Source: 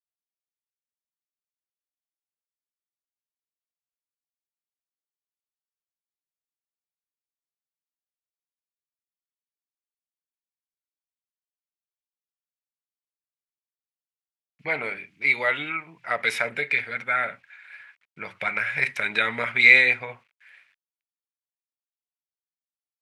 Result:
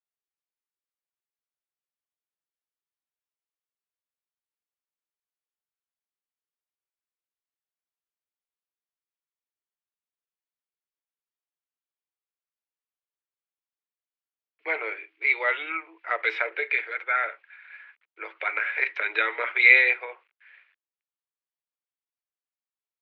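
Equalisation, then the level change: rippled Chebyshev high-pass 320 Hz, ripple 3 dB; LPF 3600 Hz 24 dB/oct; 0.0 dB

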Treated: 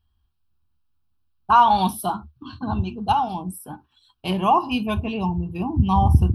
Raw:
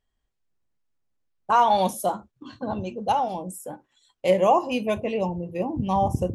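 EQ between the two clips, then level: bell 76 Hz +15 dB 0.61 oct; fixed phaser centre 2000 Hz, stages 6; notch 3500 Hz, Q 27; +6.0 dB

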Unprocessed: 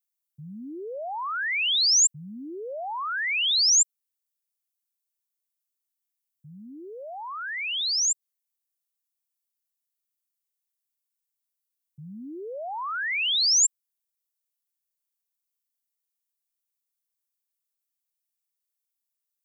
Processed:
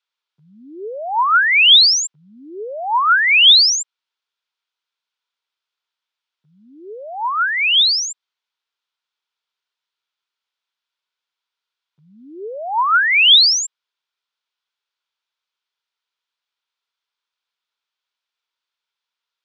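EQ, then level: speaker cabinet 410–4300 Hz, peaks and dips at 420 Hz +6 dB, 960 Hz +10 dB, 1400 Hz +10 dB, 2400 Hz +3 dB, 3400 Hz +5 dB; high shelf 2400 Hz +10.5 dB; +5.0 dB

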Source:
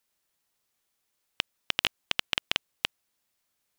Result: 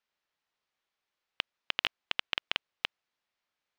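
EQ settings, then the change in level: air absorption 190 m; low shelf 410 Hz -10 dB; 0.0 dB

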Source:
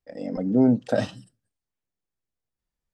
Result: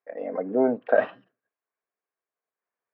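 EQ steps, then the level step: air absorption 83 m; speaker cabinet 410–2500 Hz, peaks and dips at 430 Hz +8 dB, 670 Hz +7 dB, 1100 Hz +9 dB, 1600 Hz +7 dB, 2300 Hz +4 dB; 0.0 dB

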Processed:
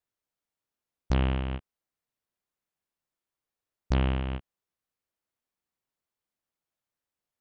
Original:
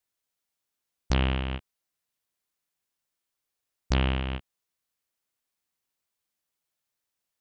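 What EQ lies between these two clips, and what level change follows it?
high shelf 2100 Hz -10 dB; 0.0 dB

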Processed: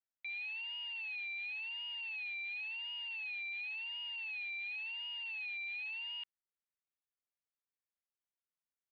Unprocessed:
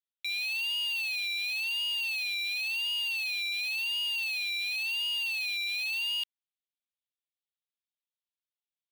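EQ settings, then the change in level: ladder low-pass 2500 Hz, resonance 30%; +1.0 dB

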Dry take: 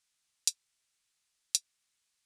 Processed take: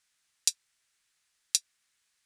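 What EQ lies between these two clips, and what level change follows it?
bell 1700 Hz +6 dB 0.84 oct; +3.0 dB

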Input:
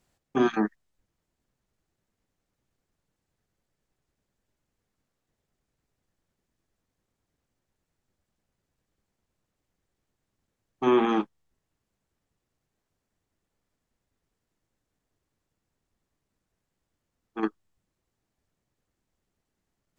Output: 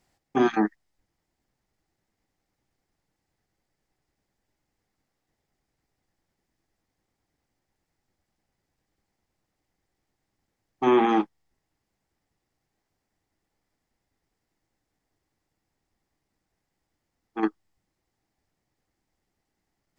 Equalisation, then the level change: thirty-one-band EQ 315 Hz +4 dB, 800 Hz +7 dB, 2000 Hz +6 dB, 5000 Hz +5 dB; 0.0 dB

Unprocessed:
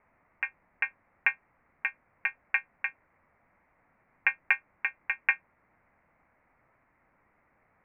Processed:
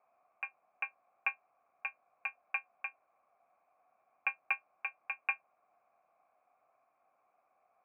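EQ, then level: vowel filter a; +5.0 dB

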